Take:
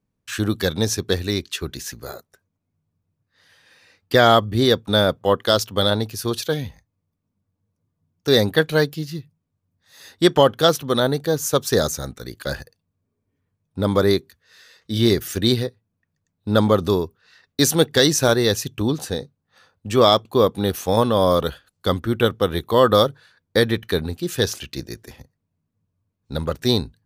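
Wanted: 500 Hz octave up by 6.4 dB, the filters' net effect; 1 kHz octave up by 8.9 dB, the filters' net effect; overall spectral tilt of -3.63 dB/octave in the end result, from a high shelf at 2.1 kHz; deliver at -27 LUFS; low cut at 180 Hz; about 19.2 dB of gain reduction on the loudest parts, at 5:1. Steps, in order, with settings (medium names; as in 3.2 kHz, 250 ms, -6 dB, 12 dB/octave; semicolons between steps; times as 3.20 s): high-pass 180 Hz; peaking EQ 500 Hz +5 dB; peaking EQ 1 kHz +8.5 dB; treble shelf 2.1 kHz +6.5 dB; compression 5:1, threshold -25 dBFS; trim +2 dB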